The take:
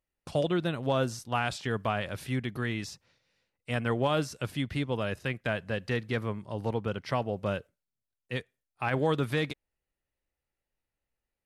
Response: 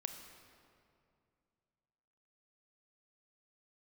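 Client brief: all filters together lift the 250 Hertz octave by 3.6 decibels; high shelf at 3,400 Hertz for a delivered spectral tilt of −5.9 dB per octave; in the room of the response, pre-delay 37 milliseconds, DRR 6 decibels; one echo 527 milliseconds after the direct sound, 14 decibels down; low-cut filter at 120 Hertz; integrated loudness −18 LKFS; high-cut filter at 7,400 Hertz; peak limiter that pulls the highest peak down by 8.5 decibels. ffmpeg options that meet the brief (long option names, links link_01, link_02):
-filter_complex "[0:a]highpass=120,lowpass=7400,equalizer=frequency=250:width_type=o:gain=5,highshelf=frequency=3400:gain=-8.5,alimiter=limit=-22.5dB:level=0:latency=1,aecho=1:1:527:0.2,asplit=2[link_01][link_02];[1:a]atrim=start_sample=2205,adelay=37[link_03];[link_02][link_03]afir=irnorm=-1:irlink=0,volume=-4.5dB[link_04];[link_01][link_04]amix=inputs=2:normalize=0,volume=16dB"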